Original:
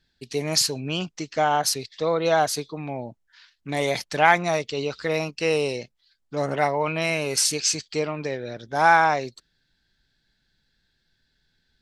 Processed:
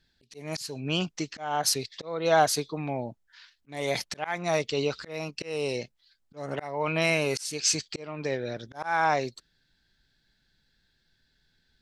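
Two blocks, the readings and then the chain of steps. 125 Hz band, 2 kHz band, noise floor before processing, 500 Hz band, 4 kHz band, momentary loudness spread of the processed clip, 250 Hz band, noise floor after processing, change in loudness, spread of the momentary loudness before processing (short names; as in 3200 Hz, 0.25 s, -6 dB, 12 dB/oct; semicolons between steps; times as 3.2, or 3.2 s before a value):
-3.5 dB, -7.0 dB, -72 dBFS, -4.5 dB, -4.5 dB, 12 LU, -3.5 dB, -72 dBFS, -5.5 dB, 14 LU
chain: auto swell 0.375 s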